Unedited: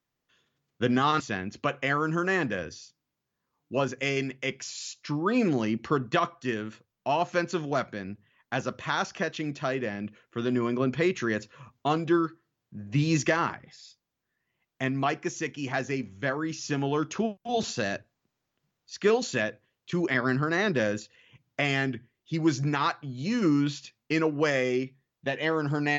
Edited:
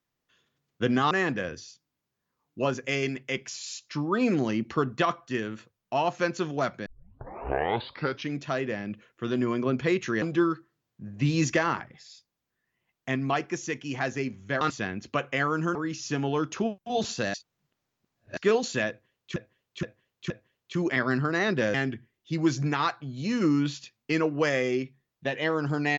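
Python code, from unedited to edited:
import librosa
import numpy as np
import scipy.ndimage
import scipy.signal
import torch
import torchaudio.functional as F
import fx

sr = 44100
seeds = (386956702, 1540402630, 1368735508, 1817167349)

y = fx.edit(x, sr, fx.move(start_s=1.11, length_s=1.14, to_s=16.34),
    fx.tape_start(start_s=8.0, length_s=1.5),
    fx.cut(start_s=11.36, length_s=0.59),
    fx.reverse_span(start_s=17.93, length_s=1.03),
    fx.repeat(start_s=19.48, length_s=0.47, count=4),
    fx.cut(start_s=20.92, length_s=0.83), tone=tone)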